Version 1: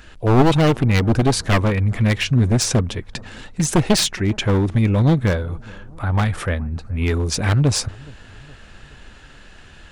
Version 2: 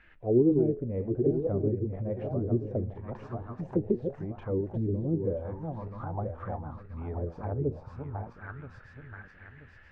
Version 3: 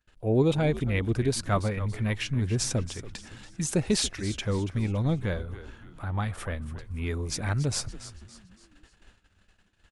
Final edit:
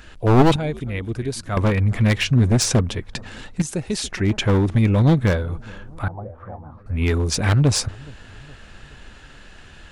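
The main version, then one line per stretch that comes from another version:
1
0:00.56–0:01.57: punch in from 3
0:03.62–0:04.11: punch in from 3
0:06.08–0:06.86: punch in from 2

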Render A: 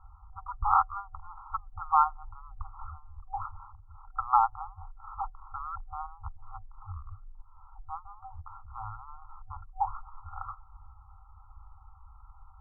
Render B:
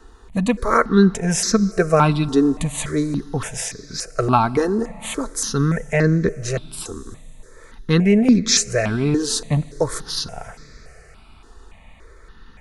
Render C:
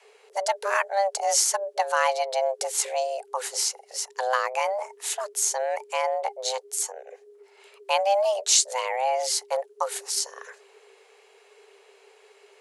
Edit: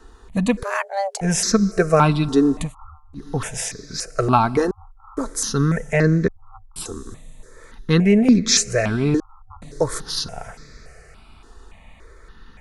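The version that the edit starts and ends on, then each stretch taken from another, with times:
B
0:00.63–0:01.21: punch in from C
0:02.67–0:03.21: punch in from A, crossfade 0.16 s
0:04.71–0:05.17: punch in from A
0:06.28–0:06.76: punch in from A
0:09.20–0:09.62: punch in from A

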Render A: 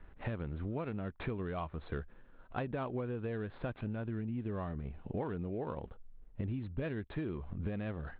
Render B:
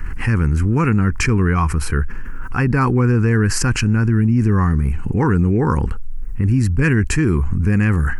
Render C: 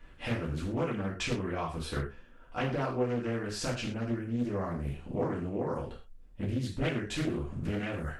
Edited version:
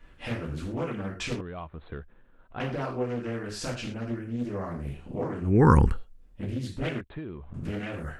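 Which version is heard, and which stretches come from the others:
C
0:01.41–0:02.60: punch in from A
0:05.53–0:05.93: punch in from B, crossfade 0.24 s
0:07.01–0:07.54: punch in from A

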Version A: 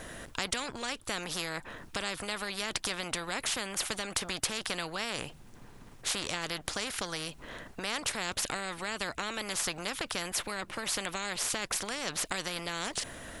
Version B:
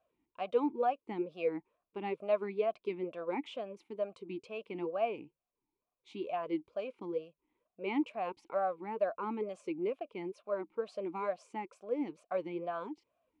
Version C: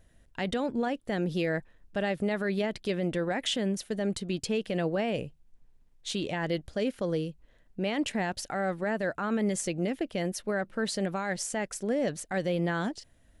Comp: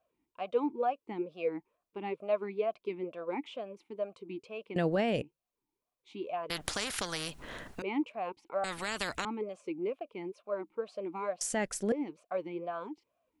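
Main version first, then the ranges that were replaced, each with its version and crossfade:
B
0:04.76–0:05.22: punch in from C
0:06.50–0:07.82: punch in from A
0:08.64–0:09.25: punch in from A
0:11.41–0:11.92: punch in from C

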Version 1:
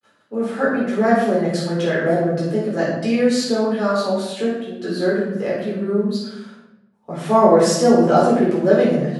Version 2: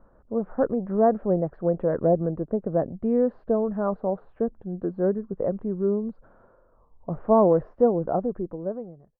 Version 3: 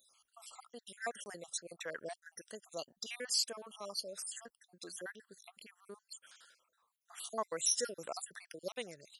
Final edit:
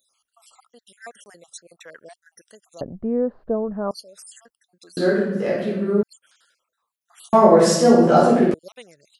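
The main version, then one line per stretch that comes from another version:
3
0:02.81–0:03.91: punch in from 2
0:04.97–0:06.03: punch in from 1
0:07.33–0:08.54: punch in from 1

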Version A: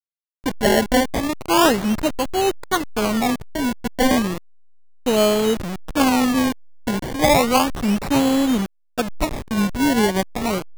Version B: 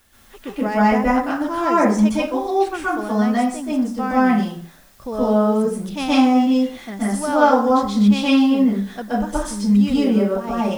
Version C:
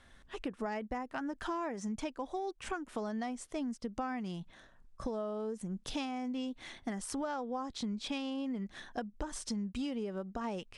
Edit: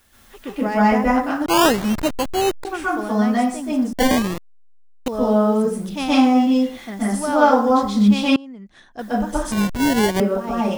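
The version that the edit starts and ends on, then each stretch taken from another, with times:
B
0:01.46–0:02.65: punch in from A
0:03.93–0:05.08: punch in from A
0:08.36–0:08.99: punch in from C
0:09.52–0:10.20: punch in from A

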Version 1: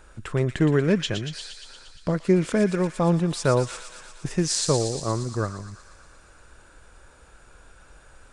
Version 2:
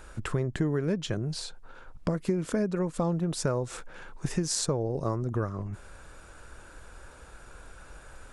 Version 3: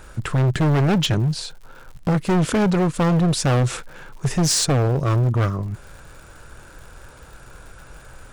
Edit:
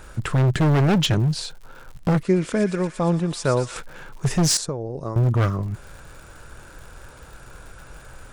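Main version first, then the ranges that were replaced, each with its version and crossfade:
3
0:02.23–0:03.76: punch in from 1
0:04.57–0:05.16: punch in from 2

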